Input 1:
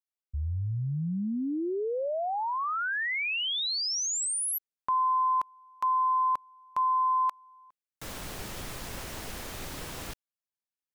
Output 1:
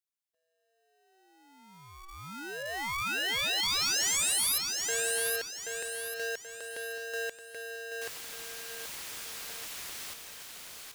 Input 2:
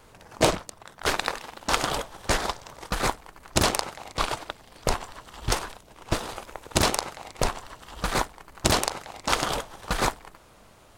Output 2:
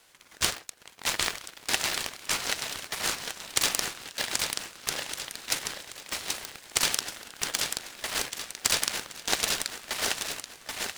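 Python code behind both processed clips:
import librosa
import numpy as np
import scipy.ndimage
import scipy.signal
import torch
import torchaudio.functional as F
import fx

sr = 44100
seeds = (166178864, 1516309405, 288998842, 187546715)

y = scipy.signal.sosfilt(scipy.signal.bessel(2, 2000.0, 'highpass', norm='mag', fs=sr, output='sos'), x)
y = fx.echo_feedback(y, sr, ms=781, feedback_pct=40, wet_db=-4.0)
y = y * np.sign(np.sin(2.0 * np.pi * 570.0 * np.arange(len(y)) / sr))
y = F.gain(torch.from_numpy(y), 1.0).numpy()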